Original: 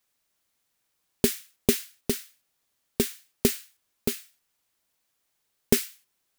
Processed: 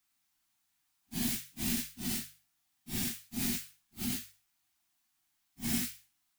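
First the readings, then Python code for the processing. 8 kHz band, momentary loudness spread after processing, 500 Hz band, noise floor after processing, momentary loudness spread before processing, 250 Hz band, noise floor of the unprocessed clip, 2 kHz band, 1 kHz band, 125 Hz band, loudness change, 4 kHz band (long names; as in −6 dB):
−5.0 dB, 10 LU, −23.5 dB, −78 dBFS, 11 LU, −6.5 dB, −77 dBFS, −5.0 dB, −6.0 dB, −6.0 dB, −6.5 dB, −5.0 dB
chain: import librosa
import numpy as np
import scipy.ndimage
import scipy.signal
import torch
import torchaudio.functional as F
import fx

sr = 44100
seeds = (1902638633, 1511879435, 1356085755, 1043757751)

p1 = fx.phase_scramble(x, sr, seeds[0], window_ms=200)
p2 = scipy.signal.sosfilt(scipy.signal.ellip(3, 1.0, 40, [340.0, 690.0], 'bandstop', fs=sr, output='sos'), p1)
p3 = fx.hum_notches(p2, sr, base_hz=50, count=3)
p4 = fx.over_compress(p3, sr, threshold_db=-32.0, ratio=-1.0)
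p5 = p3 + (p4 * 10.0 ** (-2.0 / 20.0))
y = p5 * 10.0 ** (-8.5 / 20.0)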